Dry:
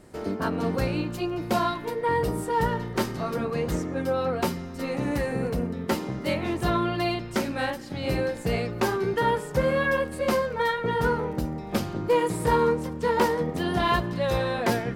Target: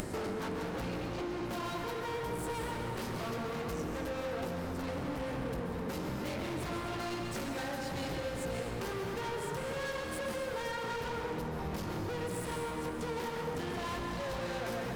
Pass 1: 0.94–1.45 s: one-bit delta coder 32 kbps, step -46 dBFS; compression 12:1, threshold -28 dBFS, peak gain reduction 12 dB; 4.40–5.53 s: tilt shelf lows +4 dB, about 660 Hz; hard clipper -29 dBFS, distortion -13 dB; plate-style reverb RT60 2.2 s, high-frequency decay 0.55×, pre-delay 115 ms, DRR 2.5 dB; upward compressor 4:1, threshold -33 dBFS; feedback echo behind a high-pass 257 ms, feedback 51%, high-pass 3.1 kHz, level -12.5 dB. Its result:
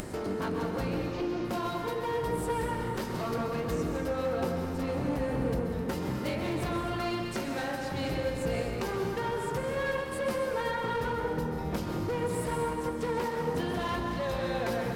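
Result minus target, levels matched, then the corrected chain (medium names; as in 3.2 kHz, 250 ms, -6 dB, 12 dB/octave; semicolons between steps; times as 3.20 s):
hard clipper: distortion -8 dB
0.94–1.45 s: one-bit delta coder 32 kbps, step -46 dBFS; compression 12:1, threshold -28 dBFS, peak gain reduction 12 dB; 4.40–5.53 s: tilt shelf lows +4 dB, about 660 Hz; hard clipper -39.5 dBFS, distortion -5 dB; plate-style reverb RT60 2.2 s, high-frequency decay 0.55×, pre-delay 115 ms, DRR 2.5 dB; upward compressor 4:1, threshold -33 dBFS; feedback echo behind a high-pass 257 ms, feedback 51%, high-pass 3.1 kHz, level -12.5 dB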